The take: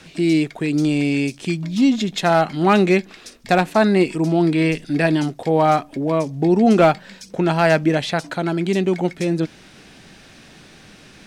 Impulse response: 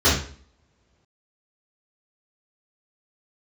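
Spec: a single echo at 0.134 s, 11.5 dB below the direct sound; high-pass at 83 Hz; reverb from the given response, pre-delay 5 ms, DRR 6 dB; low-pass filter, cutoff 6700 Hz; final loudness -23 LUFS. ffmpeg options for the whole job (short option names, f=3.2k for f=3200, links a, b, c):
-filter_complex "[0:a]highpass=83,lowpass=6.7k,aecho=1:1:134:0.266,asplit=2[a][b];[1:a]atrim=start_sample=2205,adelay=5[c];[b][c]afir=irnorm=-1:irlink=0,volume=-26.5dB[d];[a][d]amix=inputs=2:normalize=0,volume=-6.5dB"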